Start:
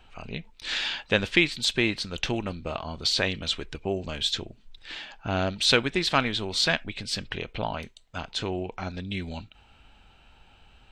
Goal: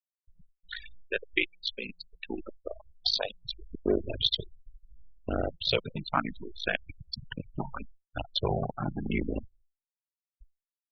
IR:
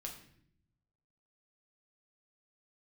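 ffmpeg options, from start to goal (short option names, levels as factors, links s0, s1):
-filter_complex "[0:a]asplit=3[s0][s1][s2];[s0]afade=t=out:st=0.81:d=0.02[s3];[s1]bass=f=250:g=-12,treble=f=4000:g=3,afade=t=in:st=0.81:d=0.02,afade=t=out:st=3.41:d=0.02[s4];[s2]afade=t=in:st=3.41:d=0.02[s5];[s3][s4][s5]amix=inputs=3:normalize=0,dynaudnorm=f=130:g=7:m=4.47,aeval=exprs='val(0)*sin(2*PI*27*n/s)':c=same,aecho=1:1:160|320|480|640|800:0.237|0.111|0.0524|0.0246|0.0116,acrusher=bits=4:dc=4:mix=0:aa=0.000001,adynamicsmooth=sensitivity=7:basefreq=920,afftfilt=real='re*gte(hypot(re,im),0.141)':imag='im*gte(hypot(re,im),0.141)':win_size=1024:overlap=0.75,highshelf=f=3600:g=-7.5,asplit=2[s6][s7];[s7]afreqshift=0.74[s8];[s6][s8]amix=inputs=2:normalize=1,volume=0.631"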